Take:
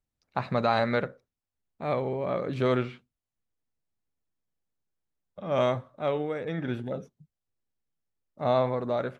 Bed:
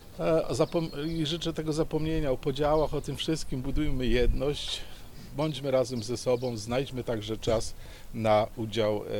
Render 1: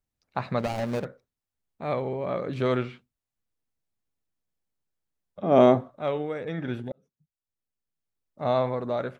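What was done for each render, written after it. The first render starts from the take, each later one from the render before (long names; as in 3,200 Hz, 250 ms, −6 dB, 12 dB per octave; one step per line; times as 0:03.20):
0:00.59–0:01.05: running median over 41 samples
0:05.43–0:05.91: hollow resonant body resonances 270/380/690 Hz, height 13 dB, ringing for 25 ms
0:06.92–0:08.42: fade in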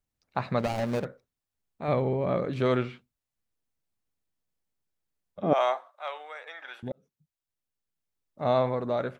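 0:01.88–0:02.45: low-shelf EQ 290 Hz +7.5 dB
0:05.53–0:06.83: high-pass filter 780 Hz 24 dB per octave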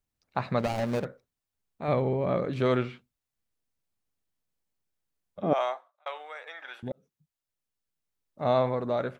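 0:05.41–0:06.06: fade out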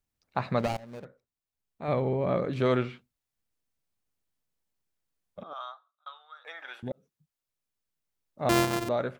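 0:00.77–0:02.22: fade in, from −21 dB
0:05.43–0:06.45: pair of resonant band-passes 2,200 Hz, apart 1.5 octaves
0:08.49–0:08.89: samples sorted by size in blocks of 128 samples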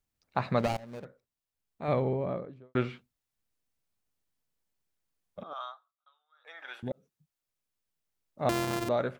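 0:01.88–0:02.75: fade out and dull
0:05.64–0:06.73: duck −21.5 dB, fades 0.41 s
0:08.49–0:08.89: downward compressor, threshold −25 dBFS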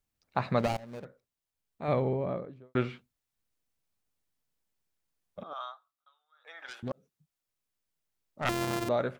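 0:06.66–0:08.61: phase distortion by the signal itself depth 0.81 ms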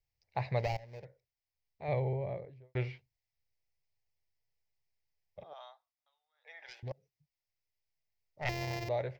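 drawn EQ curve 130 Hz 0 dB, 230 Hz −21 dB, 420 Hz −6 dB, 880 Hz −4 dB, 1,300 Hz −22 dB, 2,000 Hz +1 dB, 3,500 Hz −9 dB, 5,100 Hz 0 dB, 9,500 Hz −23 dB, 14,000 Hz −8 dB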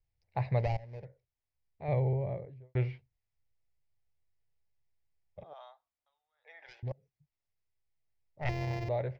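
low-pass filter 2,300 Hz 6 dB per octave
low-shelf EQ 200 Hz +7 dB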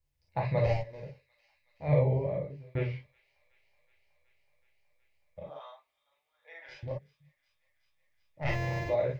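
delay with a high-pass on its return 372 ms, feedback 82%, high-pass 2,500 Hz, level −21.5 dB
reverb whose tail is shaped and stops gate 80 ms flat, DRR −3 dB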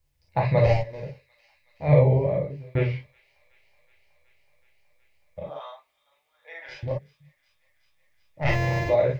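level +8 dB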